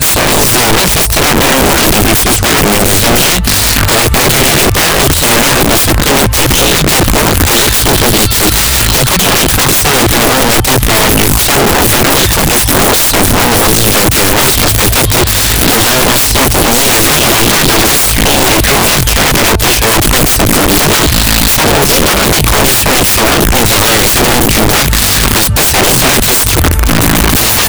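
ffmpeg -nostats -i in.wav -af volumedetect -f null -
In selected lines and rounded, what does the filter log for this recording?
mean_volume: -7.7 dB
max_volume: -1.3 dB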